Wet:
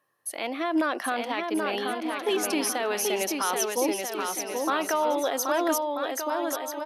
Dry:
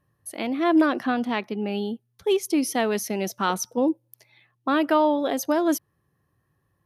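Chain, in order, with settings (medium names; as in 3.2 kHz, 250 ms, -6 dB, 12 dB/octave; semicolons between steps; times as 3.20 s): high-pass 530 Hz 12 dB/octave; peak limiter -21 dBFS, peak gain reduction 10 dB; bouncing-ball echo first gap 780 ms, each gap 0.65×, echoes 5; trim +3.5 dB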